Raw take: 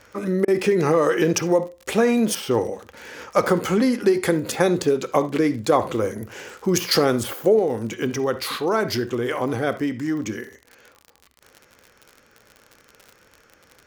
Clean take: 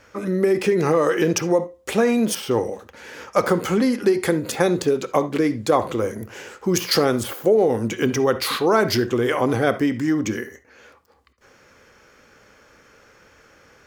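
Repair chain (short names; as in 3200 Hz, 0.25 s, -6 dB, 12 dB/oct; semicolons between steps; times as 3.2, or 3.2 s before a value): de-click; interpolate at 0.45, 28 ms; gain 0 dB, from 7.59 s +4 dB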